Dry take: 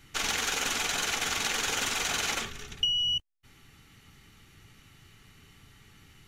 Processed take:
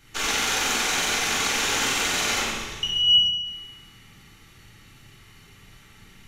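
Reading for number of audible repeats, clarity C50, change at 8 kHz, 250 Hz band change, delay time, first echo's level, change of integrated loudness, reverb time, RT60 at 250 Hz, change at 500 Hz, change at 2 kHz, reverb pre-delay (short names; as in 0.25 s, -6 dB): none, 0.0 dB, +5.5 dB, +8.0 dB, none, none, +6.5 dB, 1.2 s, 1.2 s, +6.5 dB, +6.0 dB, 14 ms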